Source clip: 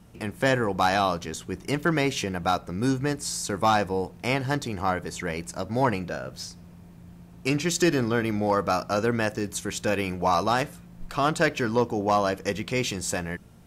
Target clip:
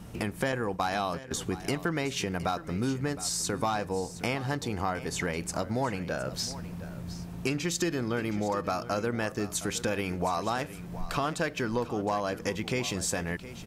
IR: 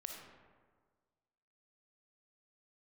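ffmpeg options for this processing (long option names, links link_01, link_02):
-filter_complex "[0:a]asettb=1/sr,asplit=3[link_01][link_02][link_03];[link_01]atrim=end=0.524[link_04];[link_02]atrim=start=0.52:end=1.31,asetpts=PTS-STARTPTS,afade=type=in:duration=0.004:curve=qsin,afade=type=out:start_time=0.786:duration=0.004:curve=qsin,agate=range=-21dB:threshold=-28dB:ratio=16:detection=peak[link_05];[link_03]atrim=start=1.306[link_06];[link_04][link_05]acrossfade=duration=0.004:curve1=hsin:curve2=qsin[link_07];[link_07][link_06]acrossfade=duration=0.004:curve1=qsin:curve2=hsin,acompressor=threshold=-37dB:ratio=4,aecho=1:1:715:0.178,volume=7.5dB"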